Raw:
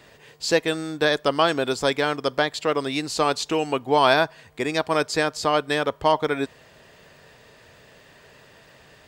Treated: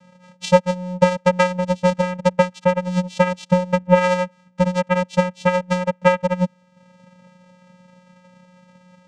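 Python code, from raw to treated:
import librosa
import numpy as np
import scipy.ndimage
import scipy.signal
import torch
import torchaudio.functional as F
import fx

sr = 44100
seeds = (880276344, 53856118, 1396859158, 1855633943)

y = fx.transient(x, sr, attack_db=10, sustain_db=-6)
y = fx.vocoder(y, sr, bands=4, carrier='square', carrier_hz=181.0)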